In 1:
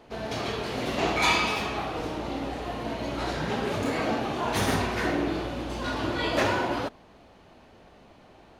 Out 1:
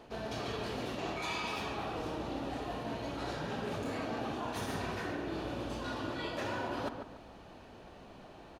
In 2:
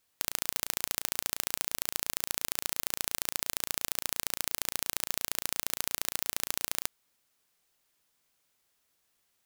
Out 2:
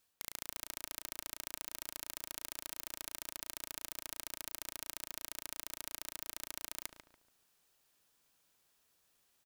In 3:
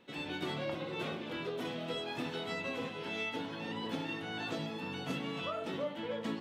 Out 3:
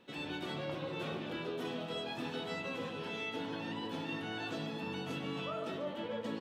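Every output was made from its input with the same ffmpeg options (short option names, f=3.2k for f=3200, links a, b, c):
-filter_complex "[0:a]bandreject=f=2.1k:w=13,areverse,acompressor=threshold=-36dB:ratio=6,areverse,asplit=2[a][b];[b]adelay=143,lowpass=f=1.8k:p=1,volume=-6dB,asplit=2[c][d];[d]adelay=143,lowpass=f=1.8k:p=1,volume=0.36,asplit=2[e][f];[f]adelay=143,lowpass=f=1.8k:p=1,volume=0.36,asplit=2[g][h];[h]adelay=143,lowpass=f=1.8k:p=1,volume=0.36[i];[a][c][e][g][i]amix=inputs=5:normalize=0"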